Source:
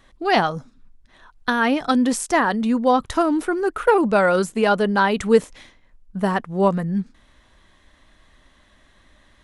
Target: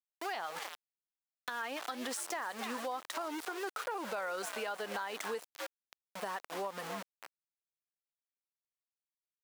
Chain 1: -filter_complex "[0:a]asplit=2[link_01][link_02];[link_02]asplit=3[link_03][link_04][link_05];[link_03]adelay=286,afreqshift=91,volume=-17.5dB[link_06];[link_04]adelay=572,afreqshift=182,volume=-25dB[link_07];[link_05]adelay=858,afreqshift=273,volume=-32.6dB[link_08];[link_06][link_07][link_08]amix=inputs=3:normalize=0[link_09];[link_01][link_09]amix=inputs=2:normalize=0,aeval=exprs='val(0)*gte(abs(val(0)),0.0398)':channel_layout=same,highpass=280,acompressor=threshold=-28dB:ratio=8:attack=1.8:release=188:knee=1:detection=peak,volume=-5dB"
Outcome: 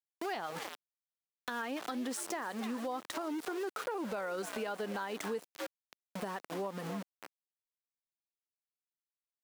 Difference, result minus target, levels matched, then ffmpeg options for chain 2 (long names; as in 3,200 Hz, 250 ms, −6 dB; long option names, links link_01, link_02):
250 Hz band +6.5 dB
-filter_complex "[0:a]asplit=2[link_01][link_02];[link_02]asplit=3[link_03][link_04][link_05];[link_03]adelay=286,afreqshift=91,volume=-17.5dB[link_06];[link_04]adelay=572,afreqshift=182,volume=-25dB[link_07];[link_05]adelay=858,afreqshift=273,volume=-32.6dB[link_08];[link_06][link_07][link_08]amix=inputs=3:normalize=0[link_09];[link_01][link_09]amix=inputs=2:normalize=0,aeval=exprs='val(0)*gte(abs(val(0)),0.0398)':channel_layout=same,highpass=640,acompressor=threshold=-28dB:ratio=8:attack=1.8:release=188:knee=1:detection=peak,volume=-5dB"